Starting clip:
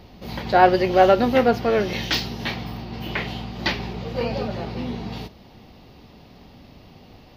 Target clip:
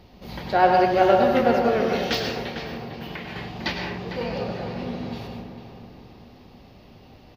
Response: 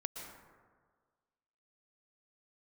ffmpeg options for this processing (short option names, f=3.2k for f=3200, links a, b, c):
-filter_complex "[1:a]atrim=start_sample=2205,afade=t=out:st=0.39:d=0.01,atrim=end_sample=17640,asetrate=52920,aresample=44100[a];[0:a][a]afir=irnorm=-1:irlink=0,asettb=1/sr,asplit=3[b][c][d];[b]atrim=end=2.414[e];[c]atrim=start=2.41:end=3.36,asetpts=PTS-STARTPTS,afade=t=in:d=0.004:c=qsin,afade=t=out:st=0.946:d=0.004:c=qsin,acompressor=threshold=-32dB:ratio=6[f];[d]atrim=start=3.356[g];[e][f]acrossfade=d=0.004:c1=hsin:c2=qsin[h];[h][g]acrossfade=d=0.004:c1=qsin:c2=hsin,asplit=2[i][j];[j]adelay=451,lowpass=f=2.3k:p=1,volume=-8dB,asplit=2[k][l];[l]adelay=451,lowpass=f=2.3k:p=1,volume=0.41,asplit=2[m][n];[n]adelay=451,lowpass=f=2.3k:p=1,volume=0.41,asplit=2[o][p];[p]adelay=451,lowpass=f=2.3k:p=1,volume=0.41,asplit=2[q][r];[r]adelay=451,lowpass=f=2.3k:p=1,volume=0.41[s];[i][k][m][o][q][s]amix=inputs=6:normalize=0"